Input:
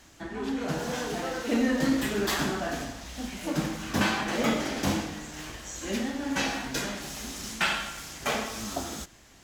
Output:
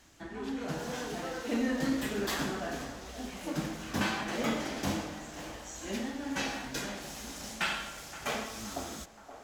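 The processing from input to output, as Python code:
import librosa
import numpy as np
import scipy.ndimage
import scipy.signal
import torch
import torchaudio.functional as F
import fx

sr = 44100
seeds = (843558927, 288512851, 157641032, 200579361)

y = fx.echo_banded(x, sr, ms=522, feedback_pct=75, hz=700.0, wet_db=-11.5)
y = F.gain(torch.from_numpy(y), -5.5).numpy()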